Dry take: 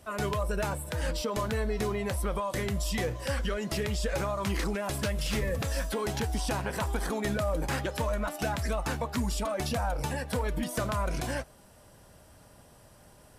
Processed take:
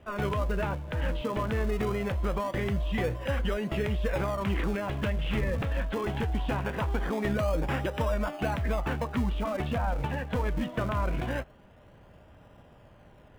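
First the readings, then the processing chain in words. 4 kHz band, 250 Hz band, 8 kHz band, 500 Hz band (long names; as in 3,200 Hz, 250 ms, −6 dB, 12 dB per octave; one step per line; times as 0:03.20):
−4.0 dB, +2.0 dB, −13.5 dB, +0.5 dB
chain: Butterworth low-pass 3,300 Hz 48 dB per octave
in parallel at −10 dB: sample-and-hold swept by an LFO 40×, swing 100% 0.22 Hz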